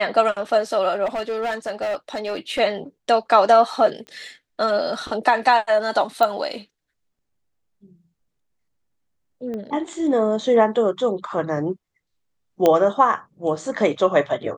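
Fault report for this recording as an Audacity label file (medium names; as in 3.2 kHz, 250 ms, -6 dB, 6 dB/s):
1.050000	2.600000	clipped -21 dBFS
4.070000	4.070000	pop -26 dBFS
6.230000	6.230000	pop -8 dBFS
9.540000	9.540000	pop -21 dBFS
12.660000	12.660000	pop -5 dBFS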